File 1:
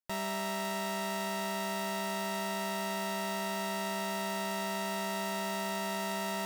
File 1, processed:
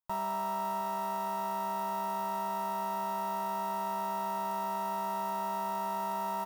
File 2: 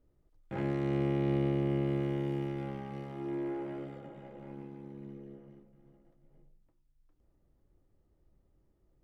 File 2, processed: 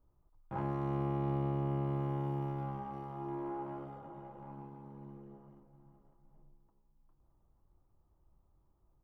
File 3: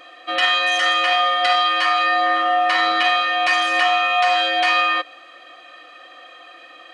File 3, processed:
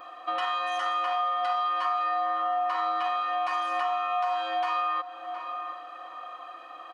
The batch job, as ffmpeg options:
-filter_complex "[0:a]equalizer=f=250:t=o:w=1:g=-5,equalizer=f=500:t=o:w=1:g=-7,equalizer=f=1k:t=o:w=1:g=12,equalizer=f=2k:t=o:w=1:g=-11,equalizer=f=4k:t=o:w=1:g=-8,equalizer=f=8k:t=o:w=1:g=-9,asplit=2[a][b];[b]adelay=717,lowpass=f=2.2k:p=1,volume=-17.5dB,asplit=2[c][d];[d]adelay=717,lowpass=f=2.2k:p=1,volume=0.35,asplit=2[e][f];[f]adelay=717,lowpass=f=2.2k:p=1,volume=0.35[g];[c][e][g]amix=inputs=3:normalize=0[h];[a][h]amix=inputs=2:normalize=0,acompressor=threshold=-29dB:ratio=3"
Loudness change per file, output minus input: 0.0, -4.0, -11.5 LU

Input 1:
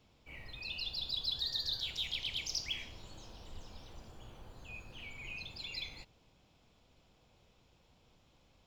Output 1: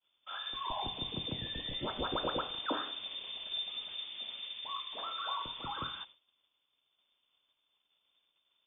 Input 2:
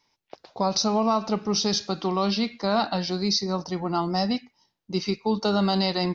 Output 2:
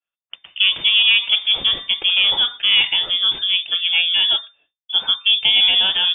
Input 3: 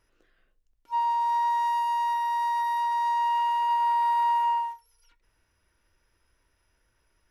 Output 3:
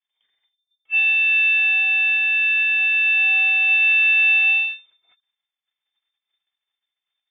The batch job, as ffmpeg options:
-af "aeval=exprs='if(lt(val(0),0),0.708*val(0),val(0))':c=same,agate=range=-33dB:threshold=-56dB:ratio=3:detection=peak,lowpass=f=3.1k:t=q:w=0.5098,lowpass=f=3.1k:t=q:w=0.6013,lowpass=f=3.1k:t=q:w=0.9,lowpass=f=3.1k:t=q:w=2.563,afreqshift=-3600,volume=9dB"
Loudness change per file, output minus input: +0.5, +10.5, +11.0 LU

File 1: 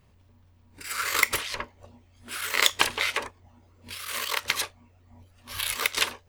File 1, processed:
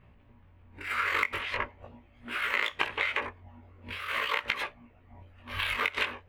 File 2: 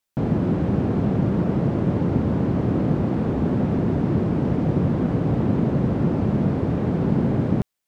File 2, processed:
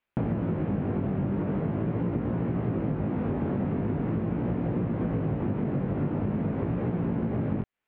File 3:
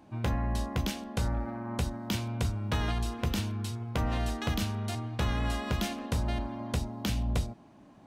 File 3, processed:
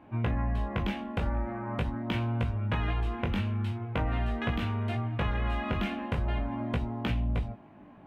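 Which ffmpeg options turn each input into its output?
-filter_complex "[0:a]highshelf=f=3.7k:t=q:w=1.5:g=-13,asplit=2[a][b];[b]adynamicsmooth=sensitivity=2:basefreq=5.4k,volume=-0.5dB[c];[a][c]amix=inputs=2:normalize=0,flanger=delay=17:depth=3.8:speed=0.43,acompressor=threshold=-25dB:ratio=8"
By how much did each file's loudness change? -4.0, -7.0, +1.0 LU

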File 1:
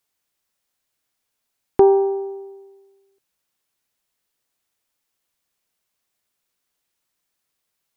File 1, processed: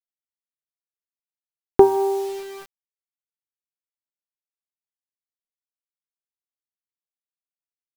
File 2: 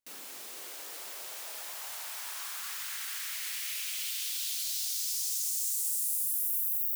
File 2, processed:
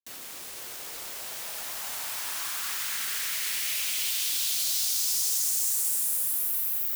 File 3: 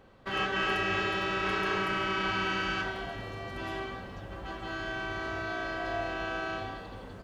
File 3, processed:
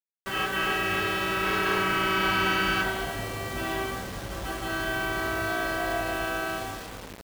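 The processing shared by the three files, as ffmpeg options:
-af "bandreject=f=98.15:t=h:w=4,bandreject=f=196.3:t=h:w=4,bandreject=f=294.45:t=h:w=4,bandreject=f=392.6:t=h:w=4,bandreject=f=490.75:t=h:w=4,bandreject=f=588.9:t=h:w=4,bandreject=f=687.05:t=h:w=4,bandreject=f=785.2:t=h:w=4,bandreject=f=883.35:t=h:w=4,bandreject=f=981.5:t=h:w=4,bandreject=f=1.07965k:t=h:w=4,bandreject=f=1.1778k:t=h:w=4,bandreject=f=1.27595k:t=h:w=4,dynaudnorm=f=470:g=7:m=4dB,acrusher=bits=6:mix=0:aa=0.000001,volume=2.5dB"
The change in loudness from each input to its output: -1.5, +5.5, +5.0 LU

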